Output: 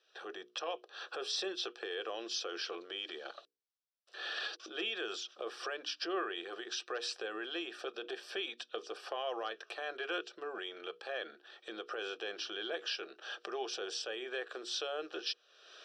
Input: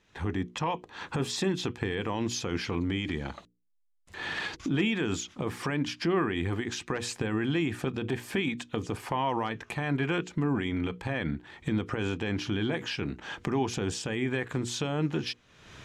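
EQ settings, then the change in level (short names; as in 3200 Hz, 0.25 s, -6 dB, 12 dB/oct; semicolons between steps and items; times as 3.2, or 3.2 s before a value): elliptic high-pass 310 Hz, stop band 60 dB; synth low-pass 6000 Hz, resonance Q 6.9; fixed phaser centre 1400 Hz, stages 8; -3.0 dB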